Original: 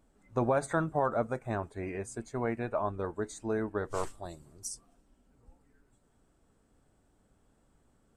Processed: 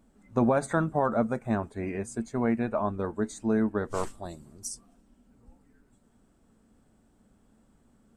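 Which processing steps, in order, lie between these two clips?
parametric band 220 Hz +10 dB 0.46 octaves
level +2.5 dB

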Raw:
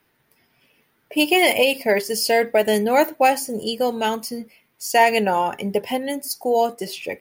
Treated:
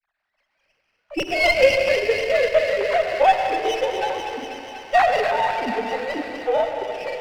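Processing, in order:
three sine waves on the formant tracks
granular cloud, spray 30 ms, pitch spread up and down by 0 semitones
delay with a high-pass on its return 245 ms, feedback 77%, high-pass 1,600 Hz, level −5.5 dB
on a send at −4.5 dB: convolution reverb RT60 2.6 s, pre-delay 73 ms
on the sum: windowed peak hold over 5 samples

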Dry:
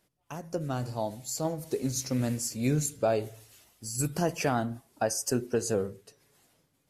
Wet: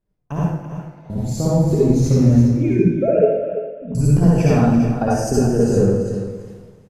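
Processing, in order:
0:02.39–0:03.95: three sine waves on the formant tracks
noise gate with hold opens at −58 dBFS
spectral tilt −4 dB per octave
downward compressor, threshold −25 dBFS, peak gain reduction 10.5 dB
0:00.39–0:01.10: resonant band-pass 2,100 Hz, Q 8.3
repeating echo 336 ms, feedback 20%, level −10 dB
convolution reverb RT60 0.85 s, pre-delay 48 ms, DRR −7 dB
level +6 dB

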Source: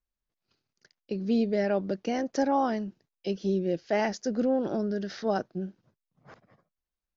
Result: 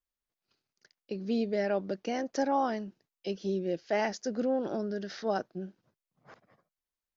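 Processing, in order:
low-shelf EQ 220 Hz −7.5 dB
level −1.5 dB

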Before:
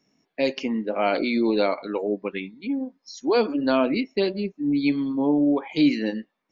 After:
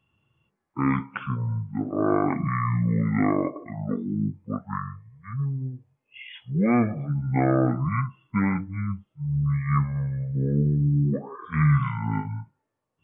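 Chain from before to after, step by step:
dynamic equaliser 1,700 Hz, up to +6 dB, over −40 dBFS, Q 1.2
wrong playback speed 15 ips tape played at 7.5 ips
level −2 dB

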